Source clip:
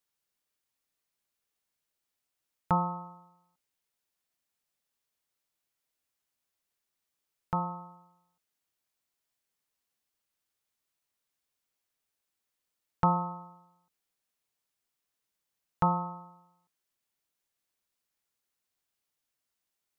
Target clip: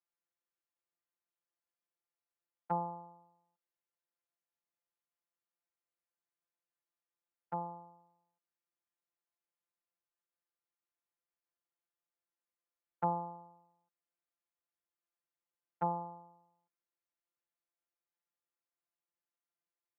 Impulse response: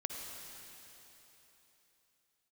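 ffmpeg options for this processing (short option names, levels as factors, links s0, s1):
-filter_complex "[0:a]afftfilt=real='hypot(re,im)*cos(PI*b)':imag='0':win_size=1024:overlap=0.75,acrossover=split=200 2200:gain=0.0708 1 0.0891[s0][s1][s2];[s0][s1][s2]amix=inputs=3:normalize=0,volume=0.668"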